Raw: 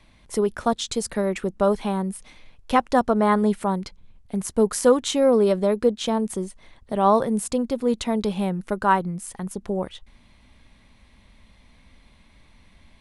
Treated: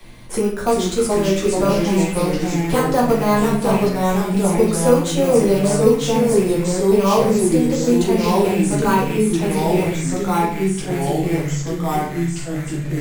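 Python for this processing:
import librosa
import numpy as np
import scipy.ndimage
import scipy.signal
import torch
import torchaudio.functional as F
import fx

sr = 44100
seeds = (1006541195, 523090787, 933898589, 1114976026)

p1 = fx.rattle_buzz(x, sr, strikes_db=-29.0, level_db=-22.0)
p2 = fx.sample_hold(p1, sr, seeds[0], rate_hz=5400.0, jitter_pct=0)
p3 = p1 + (p2 * 10.0 ** (-11.5 / 20.0))
p4 = fx.high_shelf(p3, sr, hz=7500.0, db=10.5)
p5 = fx.room_shoebox(p4, sr, seeds[1], volume_m3=42.0, walls='mixed', distance_m=1.1)
p6 = fx.echo_pitch(p5, sr, ms=344, semitones=-2, count=3, db_per_echo=-3.0)
p7 = p6 + fx.room_flutter(p6, sr, wall_m=7.1, rt60_s=0.24, dry=0)
p8 = fx.band_squash(p7, sr, depth_pct=40)
y = p8 * 10.0 ** (-7.0 / 20.0)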